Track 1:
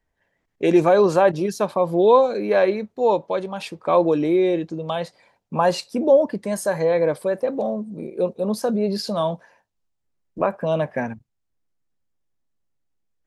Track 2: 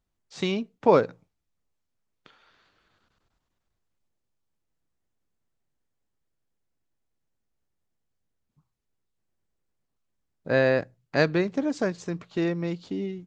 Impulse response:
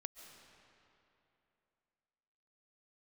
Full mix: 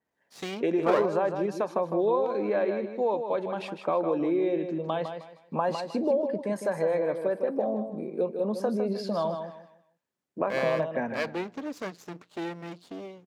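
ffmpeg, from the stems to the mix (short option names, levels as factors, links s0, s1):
-filter_complex "[0:a]acompressor=threshold=0.0891:ratio=4,highshelf=f=4300:g=-11.5,volume=0.75,asplit=2[s0][s1];[s1]volume=0.422[s2];[1:a]aeval=exprs='max(val(0),0)':c=same,volume=0.841[s3];[s2]aecho=0:1:156|312|468|624:1|0.27|0.0729|0.0197[s4];[s0][s3][s4]amix=inputs=3:normalize=0,highpass=190,adynamicequalizer=threshold=0.00398:dfrequency=3400:dqfactor=0.7:tfrequency=3400:tqfactor=0.7:attack=5:release=100:ratio=0.375:range=2:mode=cutabove:tftype=highshelf"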